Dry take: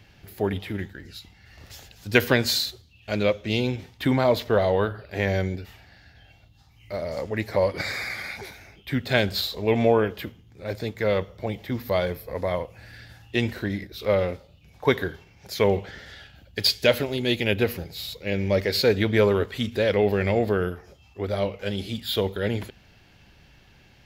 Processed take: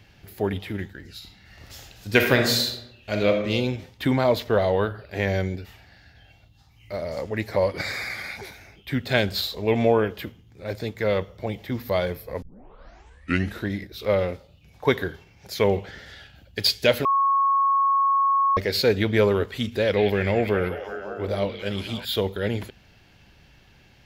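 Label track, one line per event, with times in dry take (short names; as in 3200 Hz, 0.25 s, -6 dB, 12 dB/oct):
1.140000	3.410000	reverb throw, RT60 0.88 s, DRR 3 dB
12.420000	12.420000	tape start 1.23 s
17.050000	18.570000	bleep 1100 Hz -17 dBFS
19.720000	22.050000	delay with a stepping band-pass 0.185 s, band-pass from 2900 Hz, each repeat -0.7 oct, level -2 dB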